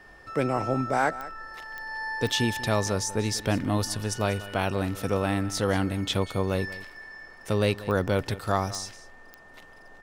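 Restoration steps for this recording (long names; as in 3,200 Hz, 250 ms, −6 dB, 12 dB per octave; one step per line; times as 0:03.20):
click removal
notch filter 1,800 Hz, Q 30
echo removal 190 ms −17 dB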